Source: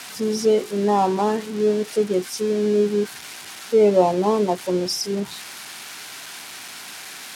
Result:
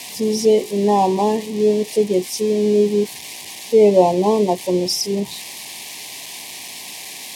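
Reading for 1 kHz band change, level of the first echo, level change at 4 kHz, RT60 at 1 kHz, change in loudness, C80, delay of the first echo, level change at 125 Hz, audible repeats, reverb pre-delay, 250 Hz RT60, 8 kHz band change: +2.5 dB, none, +4.0 dB, none, +3.5 dB, none, none, +3.5 dB, none, none, none, +4.5 dB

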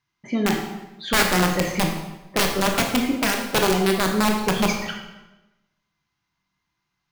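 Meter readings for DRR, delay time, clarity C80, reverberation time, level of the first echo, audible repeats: 2.0 dB, none, 7.5 dB, 1.0 s, none, none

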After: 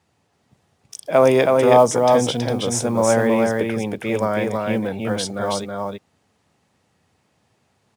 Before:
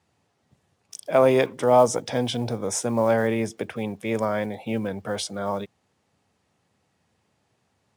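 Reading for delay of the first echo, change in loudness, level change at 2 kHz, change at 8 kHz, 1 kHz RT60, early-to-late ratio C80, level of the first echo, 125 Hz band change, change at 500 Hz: 0.323 s, +5.0 dB, +5.5 dB, +5.5 dB, none, none, -3.0 dB, +4.5 dB, +5.5 dB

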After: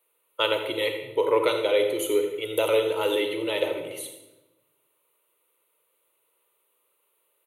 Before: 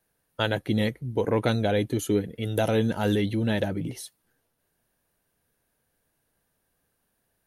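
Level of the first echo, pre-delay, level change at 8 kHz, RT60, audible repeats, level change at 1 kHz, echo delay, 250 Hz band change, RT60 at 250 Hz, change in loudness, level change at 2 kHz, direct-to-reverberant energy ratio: -13.0 dB, 33 ms, +2.5 dB, 1.0 s, 1, +2.0 dB, 83 ms, -7.5 dB, 1.3 s, +1.0 dB, +2.0 dB, 4.5 dB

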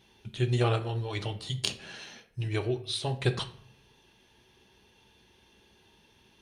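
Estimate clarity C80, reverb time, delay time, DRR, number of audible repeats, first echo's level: 17.0 dB, 0.60 s, none, 7.0 dB, none, none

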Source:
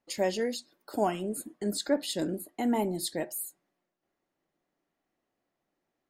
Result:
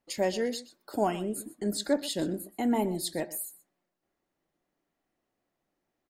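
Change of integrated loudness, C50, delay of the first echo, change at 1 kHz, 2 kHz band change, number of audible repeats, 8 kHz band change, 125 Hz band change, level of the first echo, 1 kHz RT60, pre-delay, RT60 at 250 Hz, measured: +0.5 dB, none, 0.125 s, 0.0 dB, 0.0 dB, 1, 0.0 dB, +1.0 dB, -17.5 dB, none, none, none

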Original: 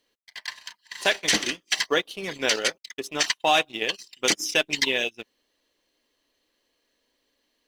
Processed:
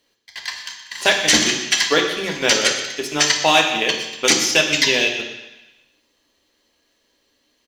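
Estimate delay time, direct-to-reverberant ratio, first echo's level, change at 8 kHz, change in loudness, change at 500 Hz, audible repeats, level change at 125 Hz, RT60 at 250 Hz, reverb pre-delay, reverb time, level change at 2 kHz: 0.122 s, 2.0 dB, -15.0 dB, +9.5 dB, +7.5 dB, +6.5 dB, 1, +10.5 dB, 1.0 s, 3 ms, 1.0 s, +7.5 dB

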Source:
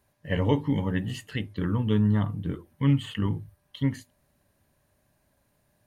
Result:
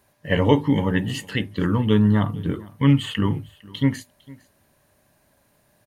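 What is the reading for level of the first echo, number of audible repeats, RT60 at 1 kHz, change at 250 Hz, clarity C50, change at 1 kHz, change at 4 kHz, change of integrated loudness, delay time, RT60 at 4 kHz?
-22.5 dB, 1, none, +6.5 dB, none, +8.5 dB, +8.5 dB, +6.0 dB, 0.455 s, none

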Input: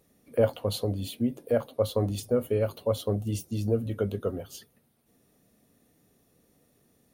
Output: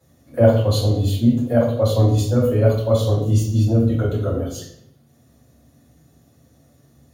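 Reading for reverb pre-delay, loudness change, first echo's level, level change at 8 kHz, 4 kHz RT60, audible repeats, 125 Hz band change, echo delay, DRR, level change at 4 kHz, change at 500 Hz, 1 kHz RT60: 3 ms, +11.0 dB, none, +8.0 dB, 0.60 s, none, +15.0 dB, none, -8.0 dB, +8.0 dB, +8.0 dB, 0.70 s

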